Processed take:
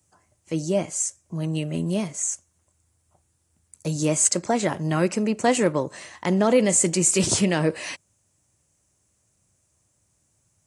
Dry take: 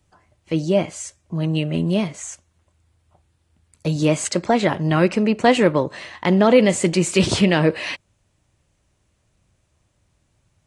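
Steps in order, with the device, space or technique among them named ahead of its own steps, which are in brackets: budget condenser microphone (HPF 73 Hz; resonant high shelf 5100 Hz +10.5 dB, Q 1.5); gain -5 dB

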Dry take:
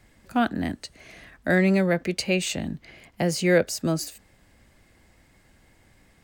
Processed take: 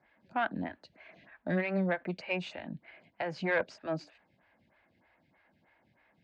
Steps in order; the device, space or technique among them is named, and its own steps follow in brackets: vibe pedal into a guitar amplifier (photocell phaser 3.2 Hz; tube stage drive 17 dB, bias 0.4; speaker cabinet 100–4000 Hz, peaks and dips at 180 Hz +3 dB, 430 Hz -4 dB, 640 Hz +5 dB, 920 Hz +6 dB, 1600 Hz +6 dB, 2400 Hz +5 dB); gain -6.5 dB

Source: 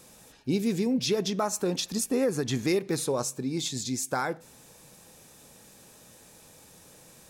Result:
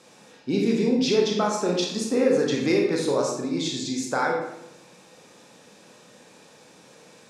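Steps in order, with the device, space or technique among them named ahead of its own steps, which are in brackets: supermarket ceiling speaker (BPF 210–5300 Hz; reverb RT60 0.85 s, pre-delay 25 ms, DRR -0.5 dB); gain +2.5 dB

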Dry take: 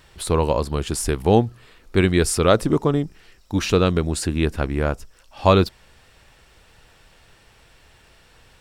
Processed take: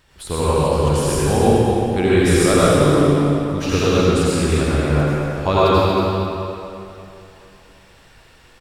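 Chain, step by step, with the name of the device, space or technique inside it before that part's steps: cave (echo 0.232 s -8 dB; reverb RT60 2.9 s, pre-delay 77 ms, DRR -9 dB); gain -5.5 dB

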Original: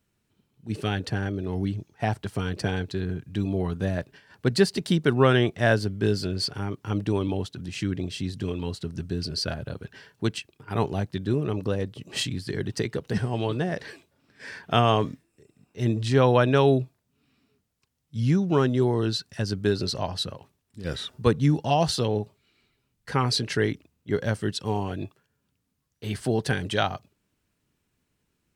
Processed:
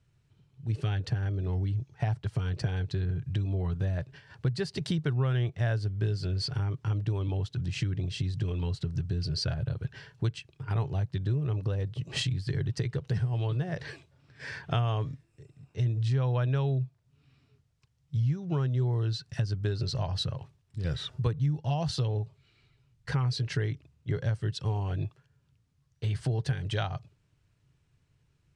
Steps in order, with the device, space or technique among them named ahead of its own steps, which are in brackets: jukebox (LPF 7100 Hz 12 dB/oct; resonant low shelf 170 Hz +7 dB, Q 3; compressor 4:1, threshold -28 dBFS, peak gain reduction 17 dB)

